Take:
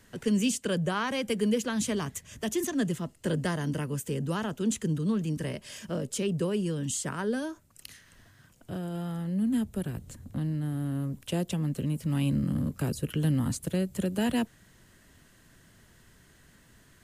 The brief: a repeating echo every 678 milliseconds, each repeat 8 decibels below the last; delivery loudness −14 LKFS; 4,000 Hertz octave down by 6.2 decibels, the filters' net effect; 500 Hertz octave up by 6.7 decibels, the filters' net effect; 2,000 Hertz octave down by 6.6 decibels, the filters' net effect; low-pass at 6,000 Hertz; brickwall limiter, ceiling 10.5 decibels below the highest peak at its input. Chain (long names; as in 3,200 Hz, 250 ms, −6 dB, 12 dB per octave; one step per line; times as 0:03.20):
low-pass filter 6,000 Hz
parametric band 500 Hz +8.5 dB
parametric band 2,000 Hz −9 dB
parametric band 4,000 Hz −4 dB
brickwall limiter −21.5 dBFS
repeating echo 678 ms, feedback 40%, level −8 dB
level +17 dB